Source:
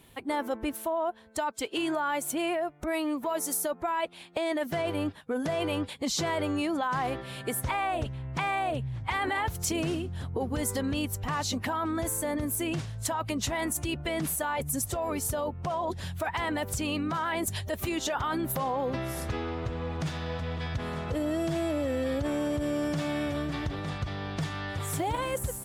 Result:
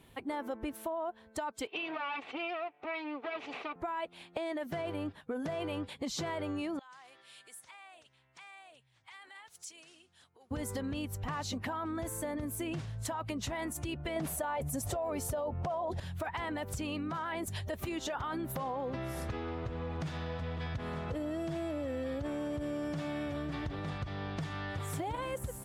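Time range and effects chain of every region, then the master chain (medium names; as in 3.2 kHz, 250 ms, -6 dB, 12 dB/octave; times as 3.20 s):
1.67–3.76 s: comb filter that takes the minimum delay 2.6 ms + cabinet simulation 250–3800 Hz, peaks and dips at 340 Hz -9 dB, 1.6 kHz -6 dB, 2.5 kHz +8 dB
6.79–10.51 s: compression 3:1, threshold -33 dBFS + Savitzky-Golay filter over 9 samples + differentiator
14.16–16.00 s: peaking EQ 660 Hz +8 dB 0.87 oct + level flattener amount 70%
whole clip: treble shelf 4.4 kHz -7 dB; compression 4:1, threshold -32 dBFS; trim -2 dB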